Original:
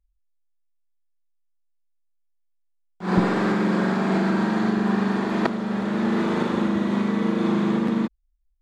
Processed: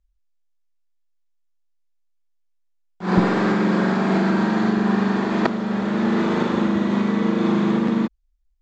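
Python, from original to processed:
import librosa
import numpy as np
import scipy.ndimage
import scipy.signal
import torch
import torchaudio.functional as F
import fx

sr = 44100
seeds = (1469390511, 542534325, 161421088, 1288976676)

y = scipy.signal.sosfilt(scipy.signal.butter(8, 7600.0, 'lowpass', fs=sr, output='sos'), x)
y = y * librosa.db_to_amplitude(2.5)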